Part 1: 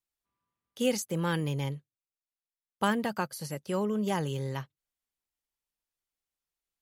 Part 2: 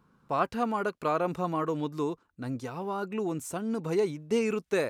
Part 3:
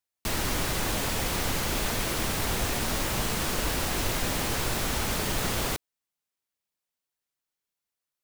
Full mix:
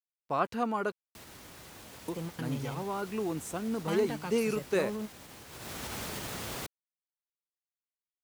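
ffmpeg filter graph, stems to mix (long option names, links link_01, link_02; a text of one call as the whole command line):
ffmpeg -i stem1.wav -i stem2.wav -i stem3.wav -filter_complex "[0:a]asoftclip=type=tanh:threshold=-27dB,adelay=1050,volume=-4dB[link_01];[1:a]volume=-2dB,asplit=3[link_02][link_03][link_04];[link_02]atrim=end=0.92,asetpts=PTS-STARTPTS,afade=type=out:start_time=0.916:duration=0.004:curve=hsin[link_05];[link_03]atrim=start=0.92:end=2.08,asetpts=PTS-STARTPTS,volume=0[link_06];[link_04]atrim=start=2.08,asetpts=PTS-STARTPTS,afade=type=in:duration=0.004:curve=hsin[link_07];[link_05][link_06][link_07]concat=n=3:v=0:a=1,asplit=2[link_08][link_09];[2:a]alimiter=limit=-20.5dB:level=0:latency=1:release=96,adelay=900,volume=-7dB,afade=type=in:start_time=5.49:duration=0.32:silence=0.281838[link_10];[link_09]apad=whole_len=347056[link_11];[link_01][link_11]sidechaingate=range=-33dB:threshold=-55dB:ratio=16:detection=peak[link_12];[link_12][link_08][link_10]amix=inputs=3:normalize=0,highpass=74,aeval=exprs='val(0)*gte(abs(val(0)),0.00188)':channel_layout=same" out.wav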